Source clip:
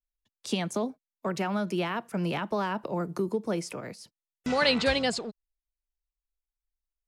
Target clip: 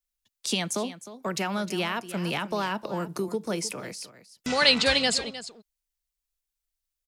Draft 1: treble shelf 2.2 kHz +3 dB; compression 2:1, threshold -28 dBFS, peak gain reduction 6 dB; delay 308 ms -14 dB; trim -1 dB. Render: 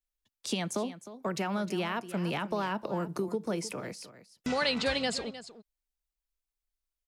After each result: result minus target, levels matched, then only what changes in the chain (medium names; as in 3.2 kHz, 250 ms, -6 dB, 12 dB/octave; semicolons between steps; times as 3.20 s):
compression: peak gain reduction +6 dB; 4 kHz band -4.0 dB
remove: compression 2:1, threshold -28 dBFS, peak gain reduction 6 dB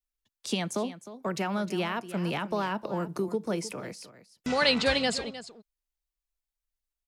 4 kHz band -3.0 dB
change: treble shelf 2.2 kHz +11 dB